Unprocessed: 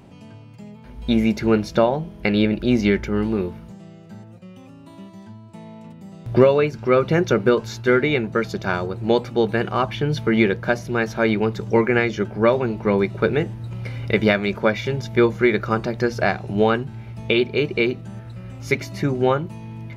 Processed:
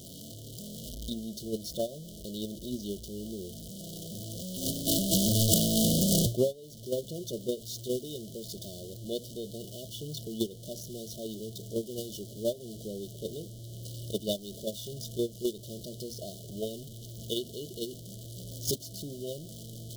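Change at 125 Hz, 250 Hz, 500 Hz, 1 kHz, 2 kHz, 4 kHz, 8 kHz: -10.5 dB, -12.5 dB, -15.5 dB, under -25 dB, under -40 dB, -3.5 dB, no reading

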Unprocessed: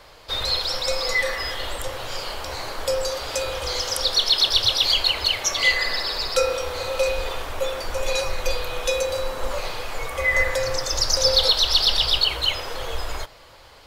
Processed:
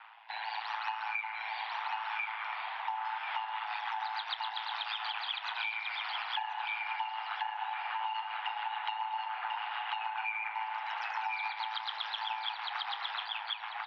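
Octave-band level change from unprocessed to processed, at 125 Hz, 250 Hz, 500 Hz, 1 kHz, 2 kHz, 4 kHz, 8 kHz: under -40 dB, under -40 dB, -31.5 dB, -1.5 dB, -10.0 dB, -18.5 dB, under -40 dB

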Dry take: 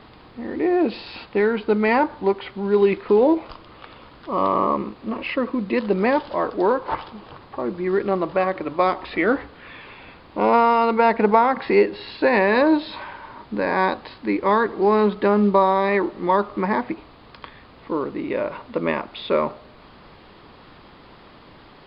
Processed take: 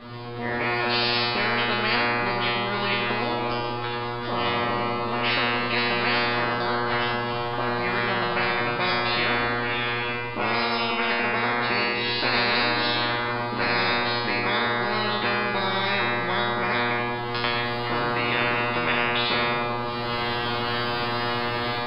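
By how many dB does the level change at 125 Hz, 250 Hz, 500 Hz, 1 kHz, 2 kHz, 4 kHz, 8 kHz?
+2.5 dB, -7.0 dB, -7.5 dB, -2.5 dB, +5.5 dB, +13.0 dB, no reading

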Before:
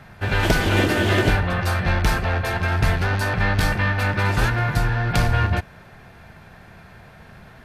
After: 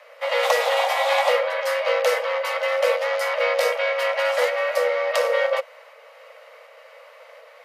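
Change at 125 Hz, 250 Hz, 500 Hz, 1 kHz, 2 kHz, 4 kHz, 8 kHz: under -40 dB, under -40 dB, +7.5 dB, +1.0 dB, -1.5 dB, +0.5 dB, -1.0 dB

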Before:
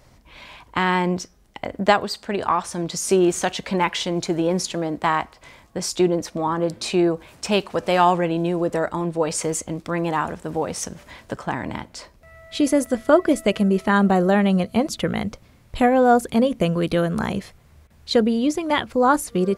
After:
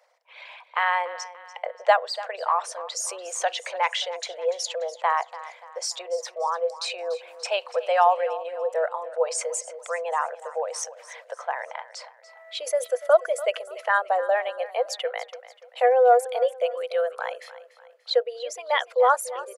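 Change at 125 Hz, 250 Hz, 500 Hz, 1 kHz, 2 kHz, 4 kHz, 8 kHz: under -40 dB, under -40 dB, -2.0 dB, -1.5 dB, -2.0 dB, -3.0 dB, -3.0 dB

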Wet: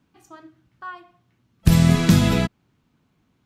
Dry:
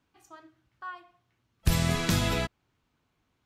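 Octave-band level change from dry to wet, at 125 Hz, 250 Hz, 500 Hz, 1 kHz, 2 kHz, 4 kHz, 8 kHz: +11.5 dB, +13.5 dB, +6.5 dB, +4.5 dB, +4.0 dB, +4.0 dB, +4.0 dB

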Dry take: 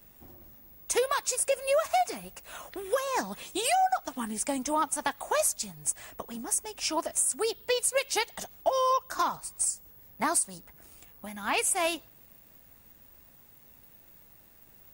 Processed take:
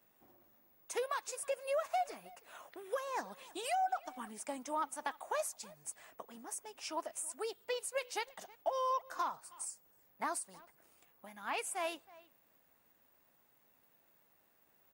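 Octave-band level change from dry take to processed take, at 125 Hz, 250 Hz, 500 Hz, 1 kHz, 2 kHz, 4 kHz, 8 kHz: under -15 dB, -13.5 dB, -9.5 dB, -8.5 dB, -10.0 dB, -12.5 dB, -15.0 dB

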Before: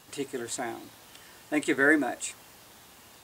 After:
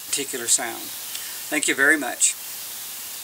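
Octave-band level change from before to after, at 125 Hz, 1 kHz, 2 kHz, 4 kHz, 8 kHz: -1.0 dB, +4.0 dB, +7.0 dB, +15.0 dB, +18.0 dB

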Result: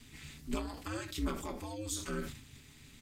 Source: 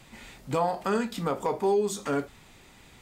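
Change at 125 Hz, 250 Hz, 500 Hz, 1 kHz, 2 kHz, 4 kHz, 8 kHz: -5.5 dB, -7.5 dB, -17.0 dB, -15.5 dB, -7.0 dB, -2.5 dB, -1.5 dB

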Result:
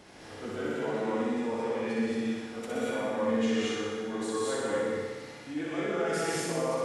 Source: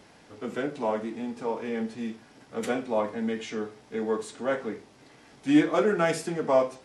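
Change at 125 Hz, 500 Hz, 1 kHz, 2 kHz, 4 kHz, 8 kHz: -2.0 dB, -2.5 dB, -4.0 dB, -1.5 dB, +2.0 dB, +4.0 dB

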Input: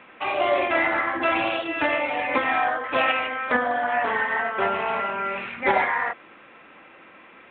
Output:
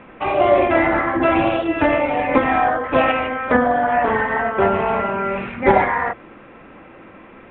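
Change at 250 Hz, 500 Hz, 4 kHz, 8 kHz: +11.5 dB, +8.5 dB, -1.5 dB, no reading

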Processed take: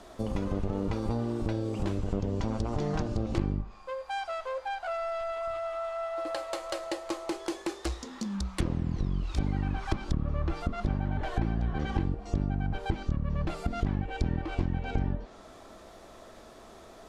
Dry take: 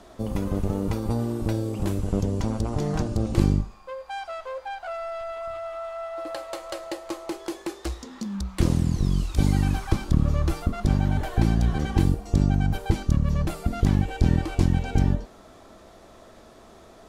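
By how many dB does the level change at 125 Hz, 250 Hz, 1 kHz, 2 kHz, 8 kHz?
-8.0 dB, -7.0 dB, -2.0 dB, -2.5 dB, -6.5 dB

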